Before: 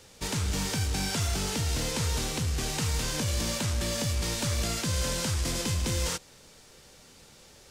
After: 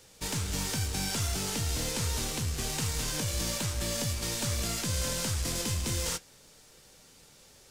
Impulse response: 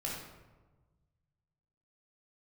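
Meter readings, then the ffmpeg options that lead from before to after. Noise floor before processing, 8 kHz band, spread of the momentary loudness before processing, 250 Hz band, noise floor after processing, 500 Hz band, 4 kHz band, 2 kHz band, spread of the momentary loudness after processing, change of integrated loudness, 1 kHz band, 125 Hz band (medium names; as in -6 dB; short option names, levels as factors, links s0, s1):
-54 dBFS, 0.0 dB, 1 LU, -3.0 dB, -57 dBFS, -3.0 dB, -1.5 dB, -2.5 dB, 2 LU, -2.0 dB, -3.0 dB, -3.0 dB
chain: -filter_complex "[0:a]highshelf=f=7900:g=7,asplit=2[s0][s1];[s1]acrusher=bits=4:dc=4:mix=0:aa=0.000001,volume=0.299[s2];[s0][s2]amix=inputs=2:normalize=0,flanger=delay=6.3:depth=4:regen=-71:speed=0.29:shape=sinusoidal"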